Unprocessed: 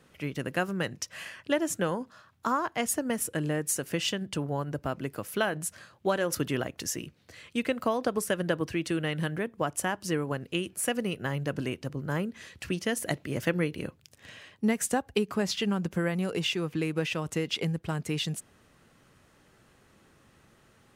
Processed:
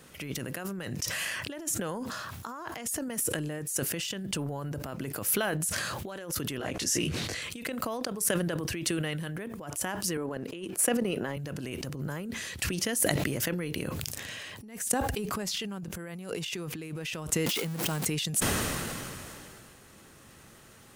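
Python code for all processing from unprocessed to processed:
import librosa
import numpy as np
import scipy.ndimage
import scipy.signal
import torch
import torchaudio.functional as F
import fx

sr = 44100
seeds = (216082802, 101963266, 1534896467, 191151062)

y = fx.chain(x, sr, fx.lowpass(hz=9500.0, slope=12),
    fx.detune_double(cents=47), at=(6.58, 7.42))
y = fx.chain(y, sr, fx.highpass(hz=290.0, slope=12),
    fx.tilt_eq(slope=-2.5),
    fx.transient(attack_db=1, sustain_db=-9), at=(10.17, 11.37))
y = fx.chain(y, sr, fx.zero_step(step_db=-32.0),
    fx.highpass(hz=140.0, slope=24), at=(17.46, 18.05))
y = fx.over_compress(y, sr, threshold_db=-38.0, ratio=-1.0)
y = fx.high_shelf(y, sr, hz=5800.0, db=11.0)
y = fx.sustainer(y, sr, db_per_s=21.0)
y = y * librosa.db_to_amplitude(-1.5)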